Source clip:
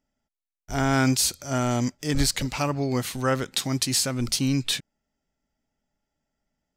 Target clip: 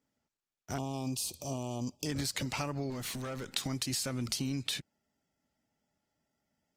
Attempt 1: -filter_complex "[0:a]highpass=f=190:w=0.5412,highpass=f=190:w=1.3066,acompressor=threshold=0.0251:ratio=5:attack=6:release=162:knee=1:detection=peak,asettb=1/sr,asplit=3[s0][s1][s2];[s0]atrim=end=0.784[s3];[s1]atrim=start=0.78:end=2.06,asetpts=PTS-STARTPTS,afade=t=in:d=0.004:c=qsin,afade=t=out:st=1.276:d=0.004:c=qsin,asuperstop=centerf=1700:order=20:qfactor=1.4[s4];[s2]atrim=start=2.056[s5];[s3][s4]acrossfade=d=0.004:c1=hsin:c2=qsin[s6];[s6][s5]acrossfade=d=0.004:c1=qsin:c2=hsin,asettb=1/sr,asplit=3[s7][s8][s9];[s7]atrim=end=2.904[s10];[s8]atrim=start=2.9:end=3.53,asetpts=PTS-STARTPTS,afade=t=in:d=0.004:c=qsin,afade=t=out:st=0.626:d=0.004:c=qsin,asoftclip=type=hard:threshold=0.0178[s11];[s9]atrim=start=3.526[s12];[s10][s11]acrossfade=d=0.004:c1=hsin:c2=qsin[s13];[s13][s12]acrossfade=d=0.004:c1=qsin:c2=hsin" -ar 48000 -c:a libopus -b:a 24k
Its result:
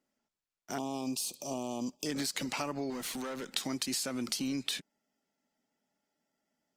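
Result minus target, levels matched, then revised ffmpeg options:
125 Hz band -10.5 dB
-filter_complex "[0:a]highpass=f=70:w=0.5412,highpass=f=70:w=1.3066,acompressor=threshold=0.0251:ratio=5:attack=6:release=162:knee=1:detection=peak,asettb=1/sr,asplit=3[s0][s1][s2];[s0]atrim=end=0.784[s3];[s1]atrim=start=0.78:end=2.06,asetpts=PTS-STARTPTS,afade=t=in:d=0.004:c=qsin,afade=t=out:st=1.276:d=0.004:c=qsin,asuperstop=centerf=1700:order=20:qfactor=1.4[s4];[s2]atrim=start=2.056[s5];[s3][s4]acrossfade=d=0.004:c1=hsin:c2=qsin[s6];[s6][s5]acrossfade=d=0.004:c1=qsin:c2=hsin,asettb=1/sr,asplit=3[s7][s8][s9];[s7]atrim=end=2.904[s10];[s8]atrim=start=2.9:end=3.53,asetpts=PTS-STARTPTS,afade=t=in:d=0.004:c=qsin,afade=t=out:st=0.626:d=0.004:c=qsin,asoftclip=type=hard:threshold=0.0178[s11];[s9]atrim=start=3.526[s12];[s10][s11]acrossfade=d=0.004:c1=hsin:c2=qsin[s13];[s13][s12]acrossfade=d=0.004:c1=qsin:c2=hsin" -ar 48000 -c:a libopus -b:a 24k

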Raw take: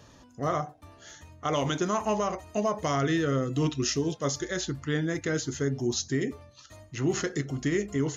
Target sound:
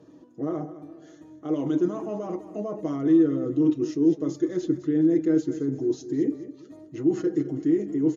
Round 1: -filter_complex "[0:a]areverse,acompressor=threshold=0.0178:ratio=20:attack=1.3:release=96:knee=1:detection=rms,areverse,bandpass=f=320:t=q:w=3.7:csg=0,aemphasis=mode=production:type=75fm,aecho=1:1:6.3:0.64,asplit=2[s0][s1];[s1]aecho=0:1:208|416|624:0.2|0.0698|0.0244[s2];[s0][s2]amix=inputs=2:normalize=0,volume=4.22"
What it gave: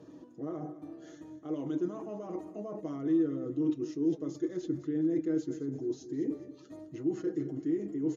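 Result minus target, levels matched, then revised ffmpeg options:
compression: peak gain reduction +9 dB
-filter_complex "[0:a]areverse,acompressor=threshold=0.0531:ratio=20:attack=1.3:release=96:knee=1:detection=rms,areverse,bandpass=f=320:t=q:w=3.7:csg=0,aemphasis=mode=production:type=75fm,aecho=1:1:6.3:0.64,asplit=2[s0][s1];[s1]aecho=0:1:208|416|624:0.2|0.0698|0.0244[s2];[s0][s2]amix=inputs=2:normalize=0,volume=4.22"

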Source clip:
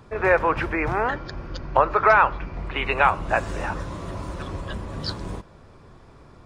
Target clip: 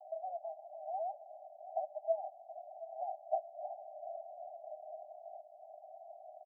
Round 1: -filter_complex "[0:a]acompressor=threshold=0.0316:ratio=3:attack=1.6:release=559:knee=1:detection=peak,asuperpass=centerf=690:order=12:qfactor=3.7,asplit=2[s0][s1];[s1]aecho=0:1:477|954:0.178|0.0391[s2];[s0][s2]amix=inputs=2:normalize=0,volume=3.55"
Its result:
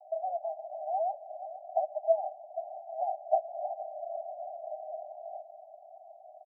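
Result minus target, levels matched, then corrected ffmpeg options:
compression: peak gain reduction -8 dB; echo 248 ms early
-filter_complex "[0:a]acompressor=threshold=0.00794:ratio=3:attack=1.6:release=559:knee=1:detection=peak,asuperpass=centerf=690:order=12:qfactor=3.7,asplit=2[s0][s1];[s1]aecho=0:1:725|1450:0.178|0.0391[s2];[s0][s2]amix=inputs=2:normalize=0,volume=3.55"

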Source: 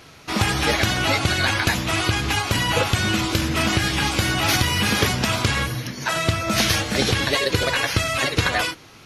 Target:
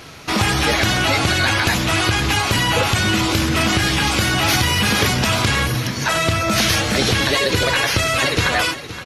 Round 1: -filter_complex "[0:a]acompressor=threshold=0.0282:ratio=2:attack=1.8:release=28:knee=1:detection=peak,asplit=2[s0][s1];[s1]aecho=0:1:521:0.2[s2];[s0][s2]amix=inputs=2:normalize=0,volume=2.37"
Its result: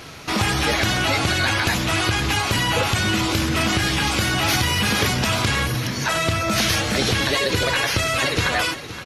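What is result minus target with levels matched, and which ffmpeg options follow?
compression: peak gain reduction +3 dB
-filter_complex "[0:a]acompressor=threshold=0.0562:ratio=2:attack=1.8:release=28:knee=1:detection=peak,asplit=2[s0][s1];[s1]aecho=0:1:521:0.2[s2];[s0][s2]amix=inputs=2:normalize=0,volume=2.37"

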